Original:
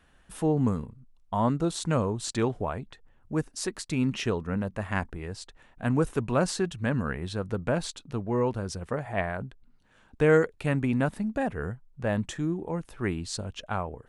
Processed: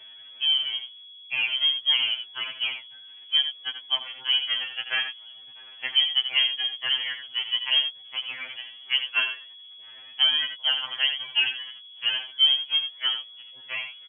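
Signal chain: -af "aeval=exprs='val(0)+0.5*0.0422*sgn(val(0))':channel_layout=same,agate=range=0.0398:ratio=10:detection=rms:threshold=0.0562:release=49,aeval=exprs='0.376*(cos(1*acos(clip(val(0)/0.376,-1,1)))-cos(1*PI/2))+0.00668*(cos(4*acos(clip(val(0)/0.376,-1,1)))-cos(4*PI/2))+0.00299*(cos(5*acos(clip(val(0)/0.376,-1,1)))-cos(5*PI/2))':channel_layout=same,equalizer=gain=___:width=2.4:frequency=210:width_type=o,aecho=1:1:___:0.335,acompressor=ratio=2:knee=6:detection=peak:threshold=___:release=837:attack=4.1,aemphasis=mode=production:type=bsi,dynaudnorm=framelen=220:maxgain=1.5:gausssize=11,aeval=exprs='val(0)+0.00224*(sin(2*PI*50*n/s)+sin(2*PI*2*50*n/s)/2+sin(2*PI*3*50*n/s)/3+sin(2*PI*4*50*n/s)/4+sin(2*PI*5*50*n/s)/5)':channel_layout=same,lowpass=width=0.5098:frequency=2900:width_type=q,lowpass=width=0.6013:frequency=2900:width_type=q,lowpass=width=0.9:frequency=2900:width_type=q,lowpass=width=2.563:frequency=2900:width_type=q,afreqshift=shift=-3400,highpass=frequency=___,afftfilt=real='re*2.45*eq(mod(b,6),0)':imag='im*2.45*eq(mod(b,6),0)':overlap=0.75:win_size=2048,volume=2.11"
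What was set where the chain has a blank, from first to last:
9.5, 83, 0.0355, 71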